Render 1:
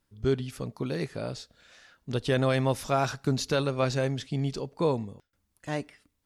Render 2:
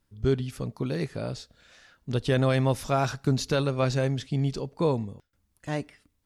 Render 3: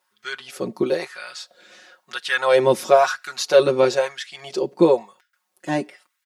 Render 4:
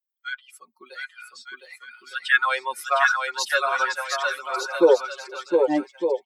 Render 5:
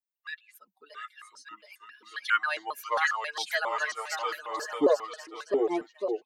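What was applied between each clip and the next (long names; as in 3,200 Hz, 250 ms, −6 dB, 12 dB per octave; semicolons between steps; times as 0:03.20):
low-shelf EQ 180 Hz +5.5 dB
comb filter 5.5 ms, depth 87%; auto-filter high-pass sine 1 Hz 270–1,700 Hz; level +4.5 dB
spectral dynamics exaggerated over time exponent 2; high-pass filter sweep 1,300 Hz → 340 Hz, 0:03.75–0:05.45; bouncing-ball delay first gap 710 ms, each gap 0.7×, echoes 5
pitch modulation by a square or saw wave square 3.7 Hz, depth 250 cents; level −7 dB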